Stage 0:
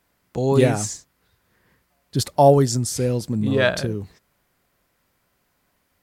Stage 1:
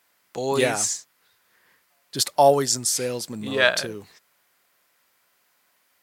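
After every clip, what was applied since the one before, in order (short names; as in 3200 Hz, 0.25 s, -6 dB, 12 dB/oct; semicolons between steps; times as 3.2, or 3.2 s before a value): HPF 1200 Hz 6 dB/oct; gain +5 dB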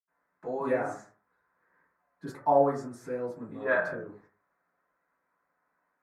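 reverb RT60 0.40 s, pre-delay 77 ms; gain -4.5 dB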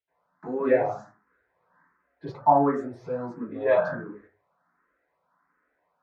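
air absorption 160 m; endless phaser +1.4 Hz; gain +8.5 dB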